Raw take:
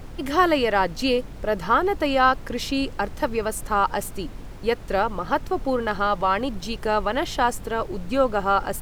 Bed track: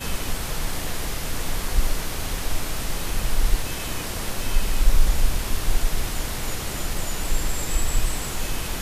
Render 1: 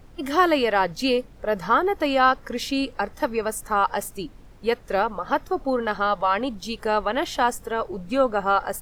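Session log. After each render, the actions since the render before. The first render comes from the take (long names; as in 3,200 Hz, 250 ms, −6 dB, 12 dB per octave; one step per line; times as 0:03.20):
noise reduction from a noise print 10 dB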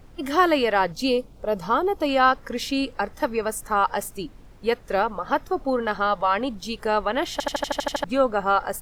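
0:00.92–0:02.09: parametric band 1,800 Hz −12.5 dB 0.57 octaves
0:07.32: stutter in place 0.08 s, 9 plays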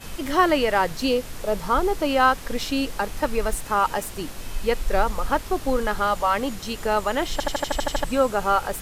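mix in bed track −9 dB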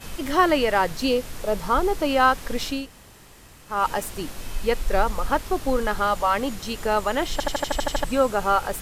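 0:02.79–0:03.74: fill with room tone, crossfade 0.24 s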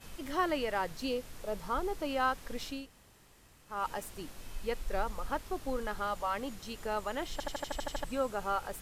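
level −12.5 dB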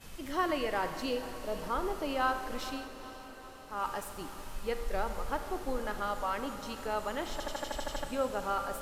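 feedback delay with all-pass diffusion 482 ms, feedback 67%, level −14 dB
four-comb reverb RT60 1.6 s, combs from 32 ms, DRR 8.5 dB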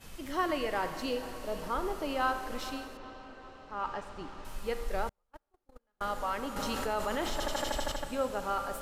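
0:02.97–0:04.45: high-frequency loss of the air 140 metres
0:05.09–0:06.01: noise gate −28 dBFS, range −45 dB
0:06.56–0:07.92: envelope flattener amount 70%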